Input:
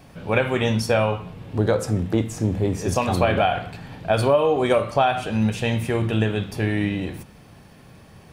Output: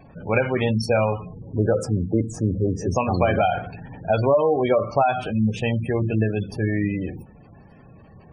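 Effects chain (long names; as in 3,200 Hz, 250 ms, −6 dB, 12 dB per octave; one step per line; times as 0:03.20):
log-companded quantiser 6 bits
gate on every frequency bin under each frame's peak −20 dB strong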